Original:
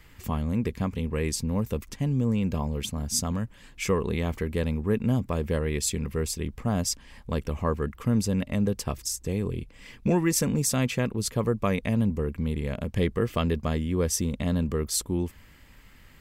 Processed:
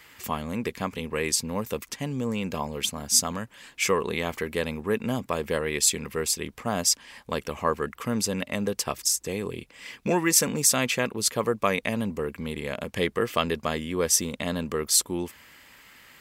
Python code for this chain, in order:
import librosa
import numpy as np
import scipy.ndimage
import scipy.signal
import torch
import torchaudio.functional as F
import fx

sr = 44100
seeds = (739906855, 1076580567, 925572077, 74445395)

y = fx.highpass(x, sr, hz=730.0, slope=6)
y = y * 10.0 ** (7.0 / 20.0)